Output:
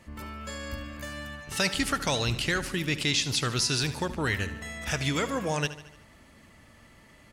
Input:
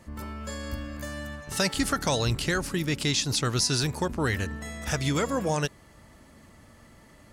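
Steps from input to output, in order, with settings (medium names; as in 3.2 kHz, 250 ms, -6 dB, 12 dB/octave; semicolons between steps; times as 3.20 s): peaking EQ 2.6 kHz +7 dB 1.2 oct; feedback delay 74 ms, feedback 55%, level -14.5 dB; trim -3 dB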